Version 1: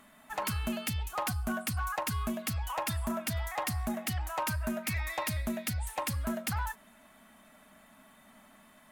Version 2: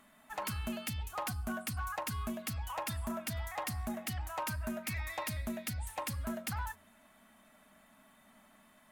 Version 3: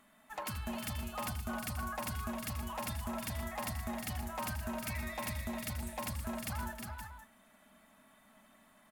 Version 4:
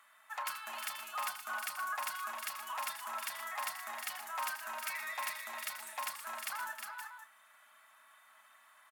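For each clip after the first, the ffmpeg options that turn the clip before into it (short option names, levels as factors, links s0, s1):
-af "bandreject=f=87.91:t=h:w=4,bandreject=f=175.82:t=h:w=4,bandreject=f=263.73:t=h:w=4,bandreject=f=351.64:t=h:w=4,bandreject=f=439.55:t=h:w=4,bandreject=f=527.46:t=h:w=4,volume=0.596"
-af "aecho=1:1:82|314|356|521:0.282|0.316|0.501|0.282,volume=0.75"
-filter_complex "[0:a]highpass=f=1200:t=q:w=1.7,asplit=2[s0][s1];[s1]adelay=31,volume=0.2[s2];[s0][s2]amix=inputs=2:normalize=0,volume=1.12"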